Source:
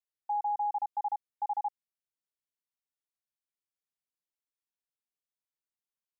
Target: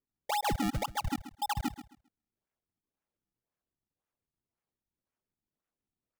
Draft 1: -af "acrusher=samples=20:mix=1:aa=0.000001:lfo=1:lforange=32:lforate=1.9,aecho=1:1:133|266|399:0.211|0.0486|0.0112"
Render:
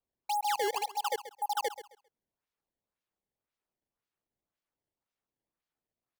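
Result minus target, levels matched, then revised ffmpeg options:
decimation with a swept rate: distortion -9 dB
-af "acrusher=samples=48:mix=1:aa=0.000001:lfo=1:lforange=76.8:lforate=1.9,aecho=1:1:133|266|399:0.211|0.0486|0.0112"

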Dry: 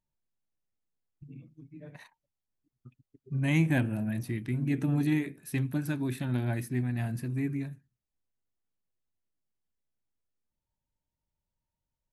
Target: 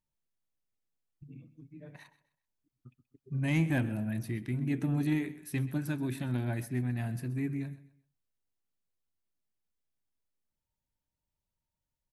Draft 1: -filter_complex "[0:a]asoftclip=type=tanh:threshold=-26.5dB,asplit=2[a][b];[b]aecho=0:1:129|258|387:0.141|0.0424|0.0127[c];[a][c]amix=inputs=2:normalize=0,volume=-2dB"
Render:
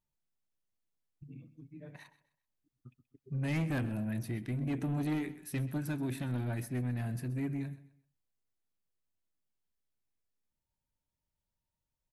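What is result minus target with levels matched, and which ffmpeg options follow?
soft clip: distortion +15 dB
-filter_complex "[0:a]asoftclip=type=tanh:threshold=-15dB,asplit=2[a][b];[b]aecho=0:1:129|258|387:0.141|0.0424|0.0127[c];[a][c]amix=inputs=2:normalize=0,volume=-2dB"

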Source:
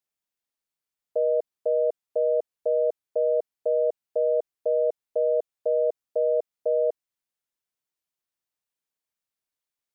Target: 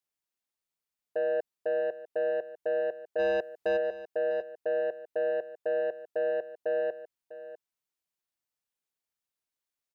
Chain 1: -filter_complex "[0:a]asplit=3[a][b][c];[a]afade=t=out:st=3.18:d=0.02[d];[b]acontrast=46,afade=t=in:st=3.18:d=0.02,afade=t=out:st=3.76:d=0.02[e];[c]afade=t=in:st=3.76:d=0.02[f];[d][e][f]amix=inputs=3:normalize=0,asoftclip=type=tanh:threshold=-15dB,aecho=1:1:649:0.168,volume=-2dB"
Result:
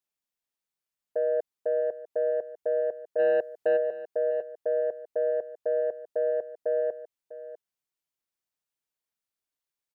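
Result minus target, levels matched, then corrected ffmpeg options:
soft clip: distortion -7 dB
-filter_complex "[0:a]asplit=3[a][b][c];[a]afade=t=out:st=3.18:d=0.02[d];[b]acontrast=46,afade=t=in:st=3.18:d=0.02,afade=t=out:st=3.76:d=0.02[e];[c]afade=t=in:st=3.76:d=0.02[f];[d][e][f]amix=inputs=3:normalize=0,asoftclip=type=tanh:threshold=-21.5dB,aecho=1:1:649:0.168,volume=-2dB"

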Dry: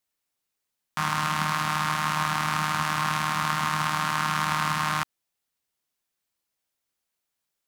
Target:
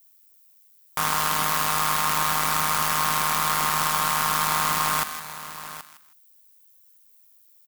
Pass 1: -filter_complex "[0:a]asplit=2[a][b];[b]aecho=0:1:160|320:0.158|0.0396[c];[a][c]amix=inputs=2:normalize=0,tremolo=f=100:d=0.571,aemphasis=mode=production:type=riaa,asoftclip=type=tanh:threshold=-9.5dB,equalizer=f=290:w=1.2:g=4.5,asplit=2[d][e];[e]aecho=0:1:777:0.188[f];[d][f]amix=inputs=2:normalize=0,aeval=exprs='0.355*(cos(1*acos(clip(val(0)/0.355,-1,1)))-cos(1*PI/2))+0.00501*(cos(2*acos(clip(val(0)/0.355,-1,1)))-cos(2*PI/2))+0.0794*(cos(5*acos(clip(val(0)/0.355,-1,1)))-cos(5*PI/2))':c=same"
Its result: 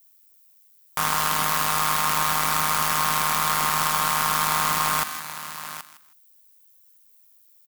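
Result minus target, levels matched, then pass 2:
soft clip: distortion -6 dB
-filter_complex "[0:a]asplit=2[a][b];[b]aecho=0:1:160|320:0.158|0.0396[c];[a][c]amix=inputs=2:normalize=0,tremolo=f=100:d=0.571,aemphasis=mode=production:type=riaa,asoftclip=type=tanh:threshold=-18dB,equalizer=f=290:w=1.2:g=4.5,asplit=2[d][e];[e]aecho=0:1:777:0.188[f];[d][f]amix=inputs=2:normalize=0,aeval=exprs='0.355*(cos(1*acos(clip(val(0)/0.355,-1,1)))-cos(1*PI/2))+0.00501*(cos(2*acos(clip(val(0)/0.355,-1,1)))-cos(2*PI/2))+0.0794*(cos(5*acos(clip(val(0)/0.355,-1,1)))-cos(5*PI/2))':c=same"

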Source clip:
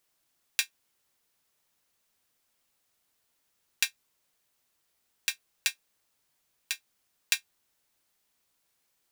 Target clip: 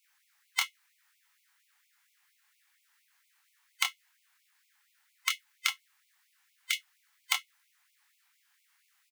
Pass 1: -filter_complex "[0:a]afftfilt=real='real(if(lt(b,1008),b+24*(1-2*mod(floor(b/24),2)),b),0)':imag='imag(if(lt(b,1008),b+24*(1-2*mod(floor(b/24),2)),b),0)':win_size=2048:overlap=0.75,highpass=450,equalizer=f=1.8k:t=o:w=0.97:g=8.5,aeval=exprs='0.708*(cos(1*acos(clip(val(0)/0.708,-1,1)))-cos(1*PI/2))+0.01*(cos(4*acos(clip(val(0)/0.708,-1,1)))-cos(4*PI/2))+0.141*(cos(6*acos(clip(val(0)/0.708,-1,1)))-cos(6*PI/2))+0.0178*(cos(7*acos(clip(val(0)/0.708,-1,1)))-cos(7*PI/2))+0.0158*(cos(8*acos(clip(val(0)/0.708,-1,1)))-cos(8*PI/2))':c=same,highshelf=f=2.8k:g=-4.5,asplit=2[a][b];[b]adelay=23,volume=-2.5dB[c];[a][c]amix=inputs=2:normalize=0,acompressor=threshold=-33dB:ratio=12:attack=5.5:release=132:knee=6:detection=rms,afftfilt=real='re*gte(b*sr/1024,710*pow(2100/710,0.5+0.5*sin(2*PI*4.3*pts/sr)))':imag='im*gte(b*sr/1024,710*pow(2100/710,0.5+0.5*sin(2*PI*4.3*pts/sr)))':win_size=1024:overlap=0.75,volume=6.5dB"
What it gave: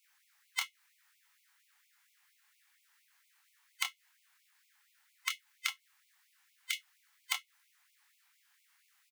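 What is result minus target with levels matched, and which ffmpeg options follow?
compressor: peak gain reduction +6.5 dB
-filter_complex "[0:a]afftfilt=real='real(if(lt(b,1008),b+24*(1-2*mod(floor(b/24),2)),b),0)':imag='imag(if(lt(b,1008),b+24*(1-2*mod(floor(b/24),2)),b),0)':win_size=2048:overlap=0.75,highpass=450,equalizer=f=1.8k:t=o:w=0.97:g=8.5,aeval=exprs='0.708*(cos(1*acos(clip(val(0)/0.708,-1,1)))-cos(1*PI/2))+0.01*(cos(4*acos(clip(val(0)/0.708,-1,1)))-cos(4*PI/2))+0.141*(cos(6*acos(clip(val(0)/0.708,-1,1)))-cos(6*PI/2))+0.0178*(cos(7*acos(clip(val(0)/0.708,-1,1)))-cos(7*PI/2))+0.0158*(cos(8*acos(clip(val(0)/0.708,-1,1)))-cos(8*PI/2))':c=same,highshelf=f=2.8k:g=-4.5,asplit=2[a][b];[b]adelay=23,volume=-2.5dB[c];[a][c]amix=inputs=2:normalize=0,acompressor=threshold=-26dB:ratio=12:attack=5.5:release=132:knee=6:detection=rms,afftfilt=real='re*gte(b*sr/1024,710*pow(2100/710,0.5+0.5*sin(2*PI*4.3*pts/sr)))':imag='im*gte(b*sr/1024,710*pow(2100/710,0.5+0.5*sin(2*PI*4.3*pts/sr)))':win_size=1024:overlap=0.75,volume=6.5dB"

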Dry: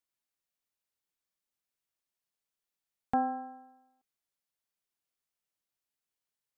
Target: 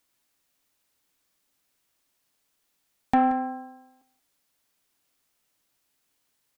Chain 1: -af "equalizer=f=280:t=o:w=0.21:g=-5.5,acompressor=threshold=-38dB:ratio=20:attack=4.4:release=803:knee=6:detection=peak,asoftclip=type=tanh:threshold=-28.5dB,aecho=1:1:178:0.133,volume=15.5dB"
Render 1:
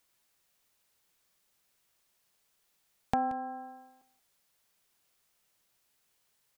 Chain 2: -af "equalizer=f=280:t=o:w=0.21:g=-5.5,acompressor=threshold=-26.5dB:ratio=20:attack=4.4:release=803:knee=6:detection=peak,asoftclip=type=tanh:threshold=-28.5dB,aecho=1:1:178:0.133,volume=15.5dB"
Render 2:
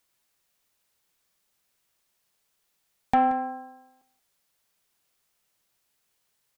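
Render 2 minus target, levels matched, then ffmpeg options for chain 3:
250 Hz band -4.0 dB
-af "equalizer=f=280:t=o:w=0.21:g=6.5,acompressor=threshold=-26.5dB:ratio=20:attack=4.4:release=803:knee=6:detection=peak,asoftclip=type=tanh:threshold=-28.5dB,aecho=1:1:178:0.133,volume=15.5dB"

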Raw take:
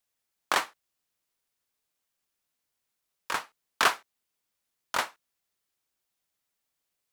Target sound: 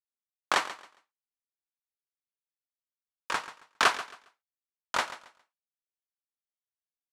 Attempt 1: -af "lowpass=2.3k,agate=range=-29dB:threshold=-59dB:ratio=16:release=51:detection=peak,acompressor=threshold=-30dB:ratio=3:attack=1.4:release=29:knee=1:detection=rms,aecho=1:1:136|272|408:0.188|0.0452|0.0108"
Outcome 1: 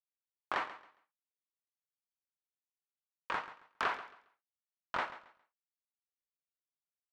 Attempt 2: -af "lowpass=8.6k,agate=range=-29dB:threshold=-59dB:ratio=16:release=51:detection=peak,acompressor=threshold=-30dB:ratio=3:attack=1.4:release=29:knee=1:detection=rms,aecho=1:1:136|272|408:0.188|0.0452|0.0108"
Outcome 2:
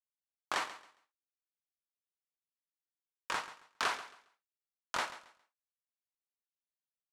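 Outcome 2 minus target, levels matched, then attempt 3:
compressor: peak gain reduction +12 dB
-af "lowpass=8.6k,agate=range=-29dB:threshold=-59dB:ratio=16:release=51:detection=peak,aecho=1:1:136|272|408:0.188|0.0452|0.0108"

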